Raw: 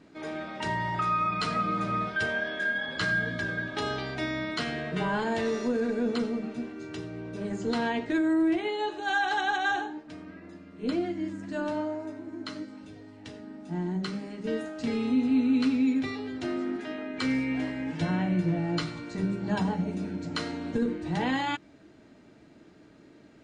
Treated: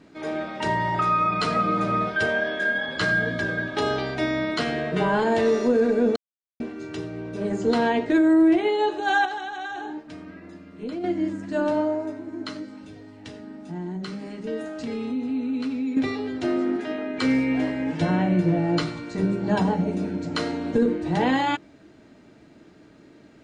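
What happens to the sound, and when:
6.16–6.60 s: mute
9.25–11.04 s: compression 16:1, threshold -33 dBFS
12.51–15.97 s: compression 2.5:1, threshold -35 dBFS
whole clip: dynamic bell 500 Hz, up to +6 dB, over -40 dBFS, Q 0.74; trim +3.5 dB

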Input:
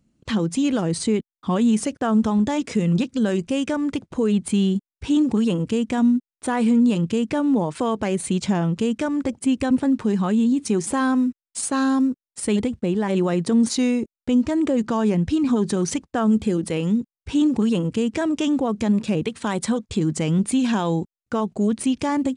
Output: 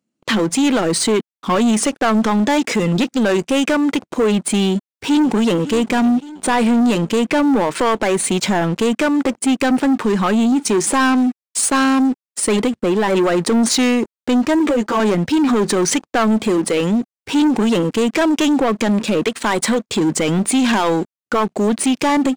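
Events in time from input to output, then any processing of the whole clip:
4.67–5.68 s: echo throw 560 ms, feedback 55%, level -18 dB
14.59–15.00 s: three-phase chorus
whole clip: high-pass 270 Hz 12 dB/octave; dynamic bell 1.7 kHz, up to +4 dB, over -38 dBFS, Q 0.73; waveshaping leveller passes 3

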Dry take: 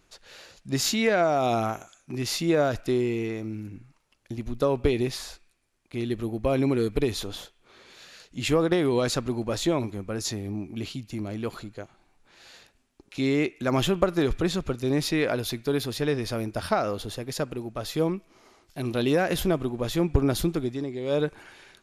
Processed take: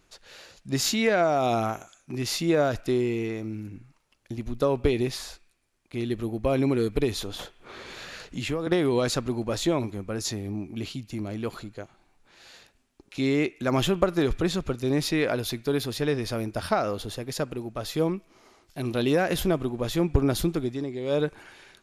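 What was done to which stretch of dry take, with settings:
7.39–8.67 s: three bands compressed up and down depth 70%

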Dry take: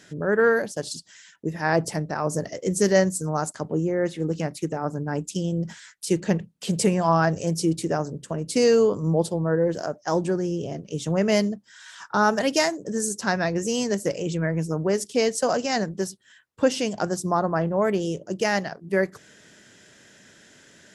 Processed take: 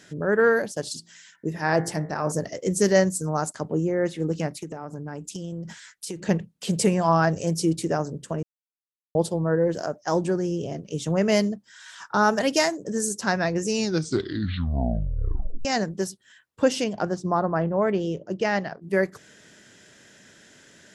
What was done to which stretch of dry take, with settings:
0.94–2.32 s: de-hum 56.8 Hz, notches 40
4.57–6.29 s: compression, threshold -30 dBFS
8.43–9.15 s: mute
13.59 s: tape stop 2.06 s
16.84–18.82 s: distance through air 150 m

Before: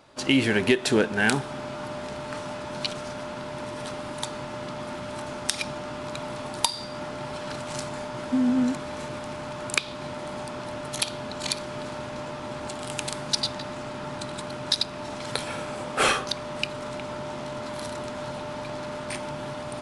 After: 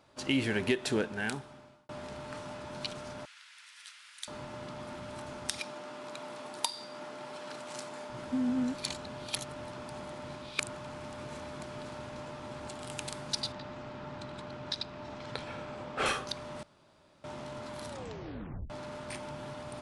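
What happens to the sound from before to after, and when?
0.89–1.89 s: fade out
3.25–4.28 s: inverse Chebyshev high-pass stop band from 500 Hz, stop band 60 dB
5.60–8.10 s: high-pass 260 Hz
8.74–11.63 s: reverse
13.52–16.06 s: distance through air 110 m
16.63–17.24 s: room tone
17.89 s: tape stop 0.81 s
whole clip: peaking EQ 74 Hz +4 dB 1.5 oct; trim -8.5 dB

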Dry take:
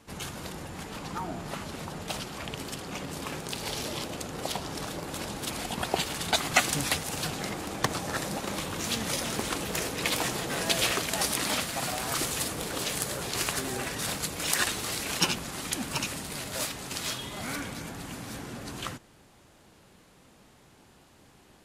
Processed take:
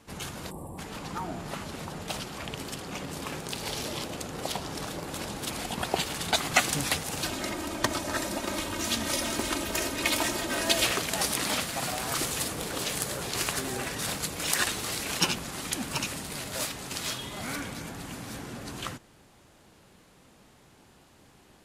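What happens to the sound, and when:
0.51–0.78 s: time-frequency box 1.2–7.4 kHz -23 dB
7.23–10.85 s: comb 3.2 ms

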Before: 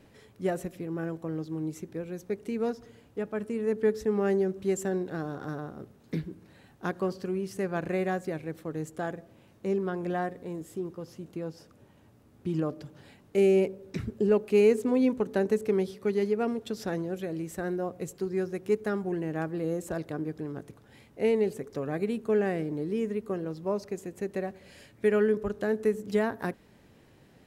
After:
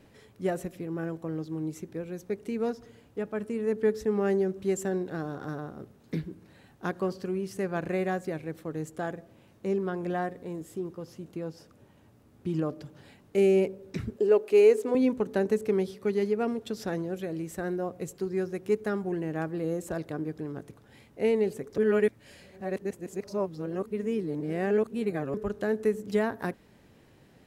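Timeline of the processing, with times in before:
14.16–14.95 s: resonant low shelf 260 Hz -11.5 dB, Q 1.5
21.78–25.34 s: reverse

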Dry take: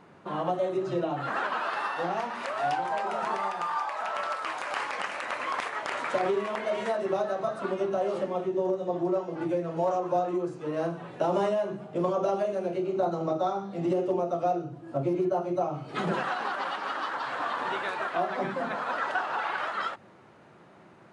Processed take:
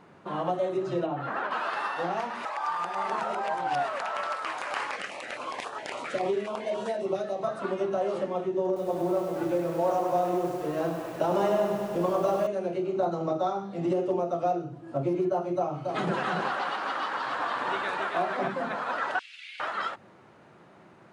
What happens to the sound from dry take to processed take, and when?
1.06–1.51 s: low-pass 1.8 kHz 6 dB/octave
2.45–4.01 s: reverse
4.96–7.43 s: step-sequenced notch 7.3 Hz 940–2100 Hz
8.66–12.47 s: bit-crushed delay 101 ms, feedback 80%, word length 8-bit, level -6.5 dB
15.57–18.48 s: delay 278 ms -4.5 dB
19.19–19.60 s: Chebyshev high-pass 2.2 kHz, order 5

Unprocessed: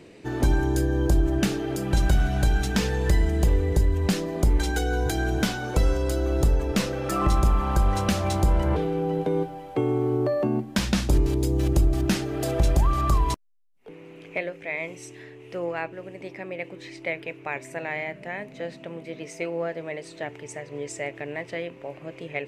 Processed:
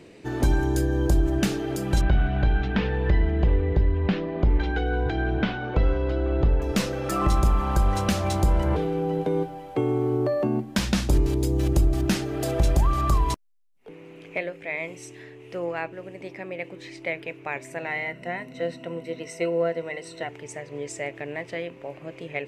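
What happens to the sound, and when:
2.01–6.62 s: low-pass 3.2 kHz 24 dB/octave
14.43–14.97 s: band-stop 6 kHz
17.86–20.29 s: rippled EQ curve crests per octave 2, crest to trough 12 dB

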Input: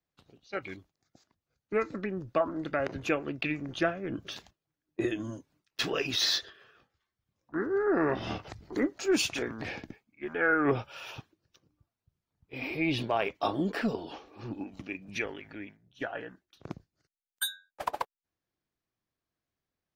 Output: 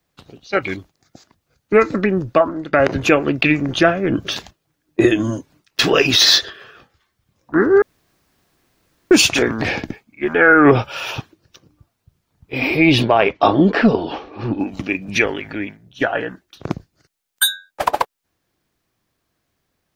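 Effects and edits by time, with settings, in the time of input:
2.16–2.73 s: fade out, to -15.5 dB
7.82–9.11 s: room tone
13.04–14.60 s: Gaussian low-pass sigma 1.8 samples
whole clip: loudness maximiser +18 dB; trim -1 dB

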